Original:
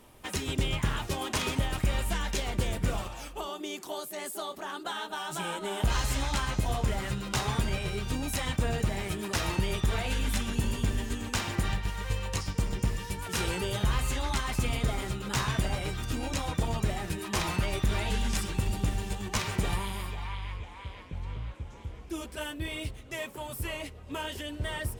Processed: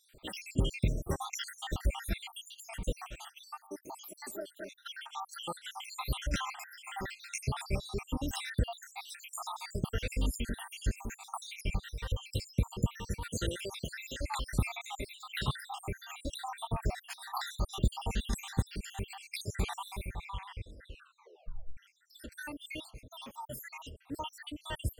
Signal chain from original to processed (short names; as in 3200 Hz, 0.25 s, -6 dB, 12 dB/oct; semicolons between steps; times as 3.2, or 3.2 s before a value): random spectral dropouts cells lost 75%; 13.49–14.2 HPF 380 Hz 6 dB/oct; 20.86 tape stop 0.91 s